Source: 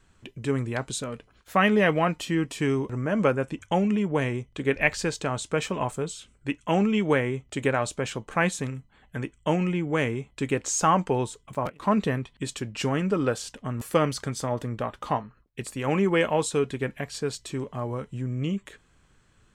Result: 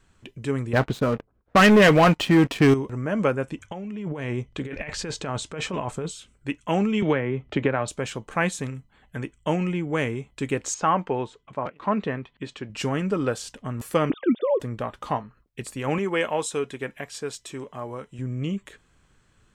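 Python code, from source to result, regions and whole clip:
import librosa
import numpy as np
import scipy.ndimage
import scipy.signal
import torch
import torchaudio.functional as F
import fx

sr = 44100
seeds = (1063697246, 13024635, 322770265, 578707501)

y = fx.chain(x, sr, fx.env_lowpass(base_hz=530.0, full_db=-20.0),
    fx.leveller(passes=3), at=(0.73, 2.74))
y = fx.chain(y, sr, fx.over_compress(threshold_db=-30.0, ratio=-1.0),
    fx.air_absorb(metres=51.0), at=(3.64, 6.11))
y = fx.chain(y, sr, fx.gaussian_blur(sigma=2.3),
    fx.band_squash(depth_pct=100), at=(7.02, 7.88))
y = fx.chain(y, sr, fx.lowpass(hz=3100.0, slope=12),
    fx.low_shelf(hz=130.0, db=-10.0), at=(10.74, 12.7))
y = fx.chain(y, sr, fx.sine_speech(),
    fx.low_shelf_res(hz=580.0, db=9.0, q=1.5), at=(14.1, 14.6))
y = fx.chain(y, sr, fx.low_shelf(hz=220.0, db=-11.0),
    fx.notch(hz=4400.0, q=9.0), at=(15.98, 18.19))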